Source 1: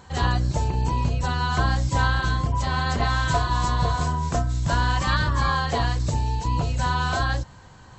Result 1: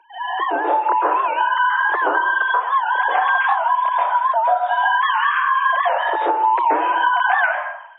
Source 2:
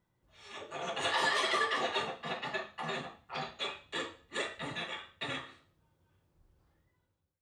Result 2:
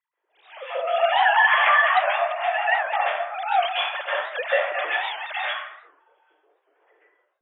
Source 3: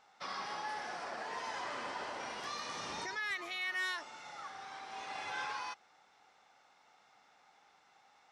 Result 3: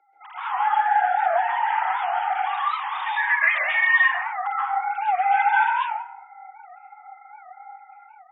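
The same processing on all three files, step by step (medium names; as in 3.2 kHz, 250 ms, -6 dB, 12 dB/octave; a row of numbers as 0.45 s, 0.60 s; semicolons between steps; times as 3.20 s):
formants replaced by sine waves; bass shelf 440 Hz +10.5 dB; plate-style reverb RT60 0.77 s, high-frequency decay 0.55×, pre-delay 120 ms, DRR -8.5 dB; compression, threshold -17 dBFS; Chebyshev high-pass 310 Hz, order 10; level rider gain up to 11 dB; warped record 78 rpm, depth 160 cents; peak normalisation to -6 dBFS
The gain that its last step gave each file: -4.5 dB, -4.0 dB, -1.0 dB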